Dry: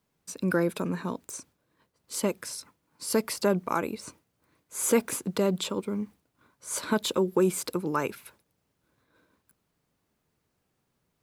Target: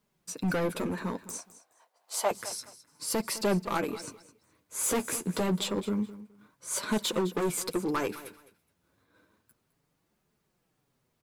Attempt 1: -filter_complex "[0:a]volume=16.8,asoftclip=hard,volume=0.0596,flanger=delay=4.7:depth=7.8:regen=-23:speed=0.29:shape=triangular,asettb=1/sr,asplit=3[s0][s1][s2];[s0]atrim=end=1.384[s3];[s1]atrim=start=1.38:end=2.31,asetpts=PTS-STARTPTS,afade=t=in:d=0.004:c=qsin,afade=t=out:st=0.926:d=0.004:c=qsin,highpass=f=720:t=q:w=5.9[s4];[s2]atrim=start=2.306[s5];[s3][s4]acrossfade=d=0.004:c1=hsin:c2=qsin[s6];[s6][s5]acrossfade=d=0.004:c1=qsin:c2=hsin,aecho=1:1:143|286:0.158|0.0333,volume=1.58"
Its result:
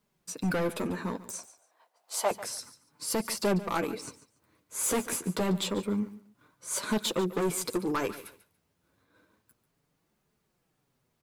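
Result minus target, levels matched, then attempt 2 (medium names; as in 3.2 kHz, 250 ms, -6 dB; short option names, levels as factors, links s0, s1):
echo 67 ms early
-filter_complex "[0:a]volume=16.8,asoftclip=hard,volume=0.0596,flanger=delay=4.7:depth=7.8:regen=-23:speed=0.29:shape=triangular,asettb=1/sr,asplit=3[s0][s1][s2];[s0]atrim=end=1.384[s3];[s1]atrim=start=1.38:end=2.31,asetpts=PTS-STARTPTS,afade=t=in:d=0.004:c=qsin,afade=t=out:st=0.926:d=0.004:c=qsin,highpass=f=720:t=q:w=5.9[s4];[s2]atrim=start=2.306[s5];[s3][s4]acrossfade=d=0.004:c1=hsin:c2=qsin[s6];[s6][s5]acrossfade=d=0.004:c1=qsin:c2=hsin,aecho=1:1:210|420:0.158|0.0333,volume=1.58"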